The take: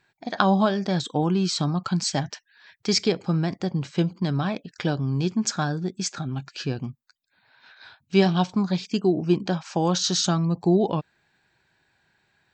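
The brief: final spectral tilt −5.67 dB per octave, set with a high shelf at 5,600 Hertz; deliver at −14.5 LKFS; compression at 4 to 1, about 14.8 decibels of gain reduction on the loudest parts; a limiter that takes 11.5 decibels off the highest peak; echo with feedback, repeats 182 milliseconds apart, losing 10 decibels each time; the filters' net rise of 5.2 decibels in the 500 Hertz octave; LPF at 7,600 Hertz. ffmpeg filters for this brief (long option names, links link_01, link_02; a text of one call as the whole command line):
ffmpeg -i in.wav -af "lowpass=7600,equalizer=frequency=500:width_type=o:gain=7.5,highshelf=frequency=5600:gain=-7.5,acompressor=threshold=-30dB:ratio=4,alimiter=limit=-24dB:level=0:latency=1,aecho=1:1:182|364|546|728:0.316|0.101|0.0324|0.0104,volume=19.5dB" out.wav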